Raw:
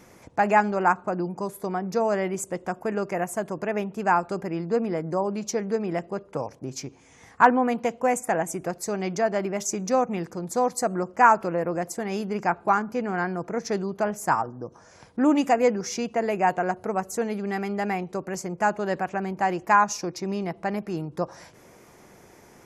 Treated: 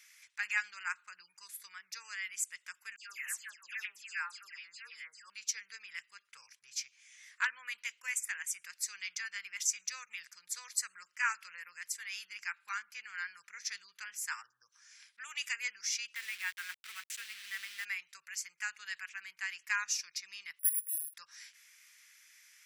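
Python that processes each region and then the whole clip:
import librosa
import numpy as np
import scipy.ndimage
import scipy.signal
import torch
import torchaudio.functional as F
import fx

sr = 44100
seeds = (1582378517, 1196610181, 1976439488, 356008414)

y = fx.chain(x, sr, fx.highpass(hz=360.0, slope=6),
    fx.dispersion(late='lows', ms=134.0, hz=2200.0), at=(2.96, 5.3))
y = fx.chain(y, sr, fx.delta_hold(step_db=-32.5),
    fx.highpass(hz=98.0, slope=6),
    fx.bass_treble(bass_db=5, treble_db=-5), at=(16.15, 17.85))
y = fx.chain(y, sr, fx.bandpass_q(hz=590.0, q=2.1),
    fx.resample_bad(factor=4, down='none', up='zero_stuff'), at=(20.59, 21.14))
y = scipy.signal.sosfilt(scipy.signal.cheby2(4, 50, 740.0, 'highpass', fs=sr, output='sos'), y)
y = fx.high_shelf(y, sr, hz=11000.0, db=-4.5)
y = fx.notch(y, sr, hz=6600.0, q=24.0)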